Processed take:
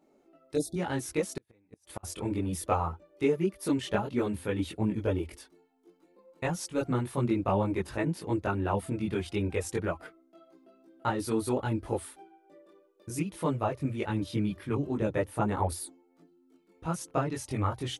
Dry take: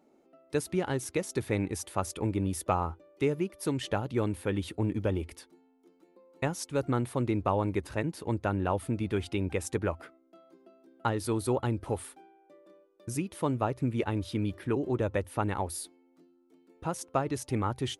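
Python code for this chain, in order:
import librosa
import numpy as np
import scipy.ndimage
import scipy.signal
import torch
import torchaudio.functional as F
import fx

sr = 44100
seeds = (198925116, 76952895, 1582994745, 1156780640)

y = fx.spec_erase(x, sr, start_s=0.55, length_s=0.21, low_hz=810.0, high_hz=3400.0)
y = fx.chorus_voices(y, sr, voices=6, hz=0.53, base_ms=21, depth_ms=3.5, mix_pct=55)
y = fx.gate_flip(y, sr, shuts_db=-26.0, range_db=-39, at=(1.35, 2.03), fade=0.02)
y = y * 10.0 ** (3.0 / 20.0)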